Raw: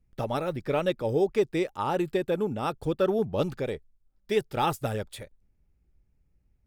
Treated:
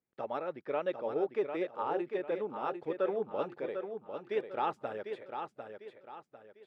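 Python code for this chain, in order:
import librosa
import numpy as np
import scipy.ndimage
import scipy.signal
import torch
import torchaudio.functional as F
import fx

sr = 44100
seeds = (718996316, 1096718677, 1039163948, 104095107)

p1 = fx.bandpass_edges(x, sr, low_hz=370.0, high_hz=2100.0)
p2 = p1 + fx.echo_feedback(p1, sr, ms=749, feedback_pct=36, wet_db=-7, dry=0)
y = p2 * 10.0 ** (-5.5 / 20.0)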